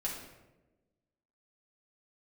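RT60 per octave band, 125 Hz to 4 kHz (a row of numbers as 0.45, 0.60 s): 1.4, 1.5, 1.3, 0.90, 0.80, 0.65 s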